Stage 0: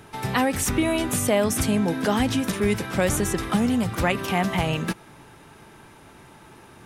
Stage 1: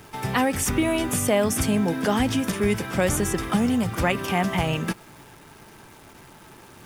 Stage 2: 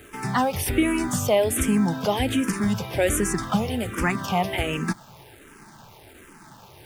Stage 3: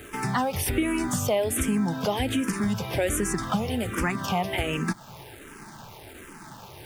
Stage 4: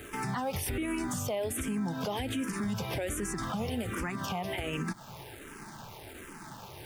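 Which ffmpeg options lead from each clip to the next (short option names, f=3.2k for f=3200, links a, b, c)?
-af "bandreject=f=4k:w=11,acrusher=bits=9:dc=4:mix=0:aa=0.000001"
-filter_complex "[0:a]asplit=2[a][b];[b]afreqshift=-1.3[c];[a][c]amix=inputs=2:normalize=1,volume=2.5dB"
-af "acompressor=threshold=-31dB:ratio=2,volume=3.5dB"
-af "alimiter=limit=-23dB:level=0:latency=1:release=94,volume=-2dB"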